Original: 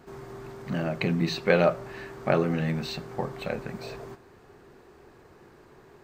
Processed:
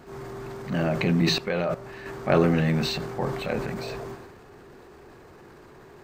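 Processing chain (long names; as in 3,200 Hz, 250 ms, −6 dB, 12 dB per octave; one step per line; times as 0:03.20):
transient designer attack −5 dB, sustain +6 dB
0:01.38–0:02.06: output level in coarse steps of 15 dB
level +4.5 dB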